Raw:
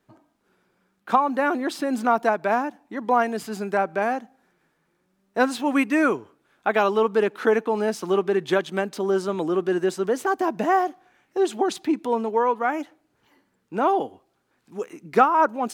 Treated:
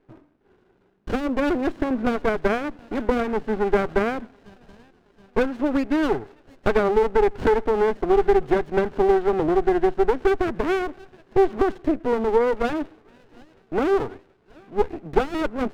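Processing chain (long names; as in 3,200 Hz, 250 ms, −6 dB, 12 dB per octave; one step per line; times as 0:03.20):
low-shelf EQ 380 Hz +9.5 dB
downward compressor, threshold −20 dBFS, peak gain reduction 11.5 dB
loudspeaker in its box 120–2,800 Hz, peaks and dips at 190 Hz −8 dB, 410 Hz +8 dB, 1,500 Hz +7 dB
delay with a high-pass on its return 723 ms, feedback 54%, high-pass 1,700 Hz, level −12 dB
windowed peak hold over 33 samples
level +2 dB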